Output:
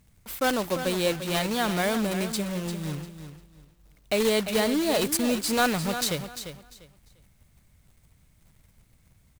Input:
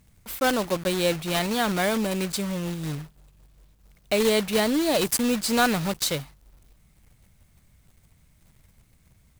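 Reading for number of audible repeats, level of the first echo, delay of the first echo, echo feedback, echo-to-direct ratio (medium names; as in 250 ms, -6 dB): 2, -10.0 dB, 347 ms, 22%, -10.0 dB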